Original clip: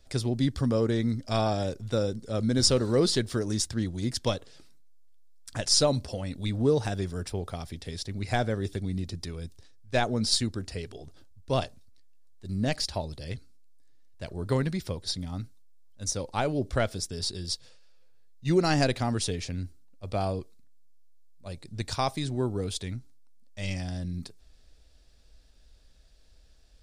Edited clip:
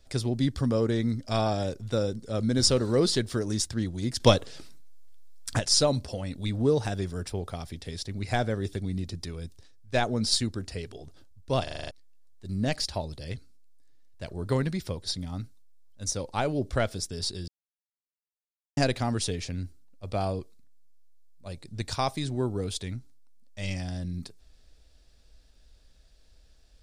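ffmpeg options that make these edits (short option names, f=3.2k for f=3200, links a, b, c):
-filter_complex "[0:a]asplit=12[a][b][c][d][e][f][g][h][i][j][k][l];[a]atrim=end=4.202[m];[b]atrim=start=4.198:end=5.592,asetpts=PTS-STARTPTS,volume=9dB[n];[c]atrim=start=5.588:end=11.672[o];[d]atrim=start=11.628:end=11.672[p];[e]atrim=start=11.628:end=11.672[q];[f]atrim=start=11.628:end=11.672[r];[g]atrim=start=11.628:end=11.672[s];[h]atrim=start=11.628:end=11.672[t];[i]atrim=start=11.628:end=11.672[u];[j]atrim=start=11.908:end=17.48,asetpts=PTS-STARTPTS,afade=t=out:st=5.568:d=0.004:c=hsin[v];[k]atrim=start=17.48:end=18.77,asetpts=PTS-STARTPTS,volume=0[w];[l]atrim=start=18.77,asetpts=PTS-STARTPTS,afade=t=in:d=0.004:c=hsin[x];[m][n]acrossfade=d=0.004:c1=hsin:c2=hsin[y];[y][o]acrossfade=d=0.004:c1=hsin:c2=hsin[z];[z][p]acrossfade=d=0.004:c1=hsin:c2=hsin[aa];[aa][q]acrossfade=d=0.004:c1=hsin:c2=hsin[ab];[ab][r]acrossfade=d=0.004:c1=hsin:c2=hsin[ac];[ac][s]acrossfade=d=0.004:c1=hsin:c2=hsin[ad];[ad][t]acrossfade=d=0.004:c1=hsin:c2=hsin[ae];[ae][u]acrossfade=d=0.004:c1=hsin:c2=hsin[af];[v][w][x]concat=n=3:v=0:a=1[ag];[af][ag]acrossfade=d=0.004:c1=hsin:c2=hsin"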